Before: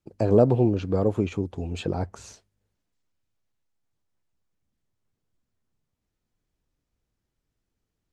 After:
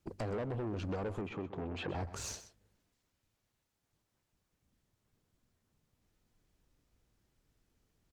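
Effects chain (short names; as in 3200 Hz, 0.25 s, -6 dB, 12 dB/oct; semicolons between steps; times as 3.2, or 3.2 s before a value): compressor 16:1, threshold -31 dBFS, peak gain reduction 20 dB; tube stage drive 40 dB, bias 0.35; 1.21–1.95 BPF 130–2700 Hz; echo 0.126 s -14 dB; gain +6 dB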